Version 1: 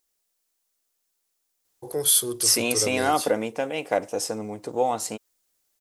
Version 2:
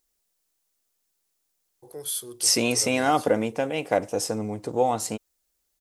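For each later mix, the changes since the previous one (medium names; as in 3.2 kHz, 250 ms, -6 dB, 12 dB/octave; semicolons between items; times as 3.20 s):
first voice -11.0 dB; second voice: add bass shelf 170 Hz +10.5 dB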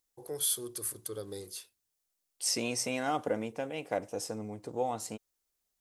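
first voice: entry -1.65 s; second voice -10.0 dB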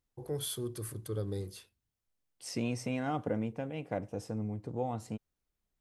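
second voice -4.5 dB; master: add tone controls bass +14 dB, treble -10 dB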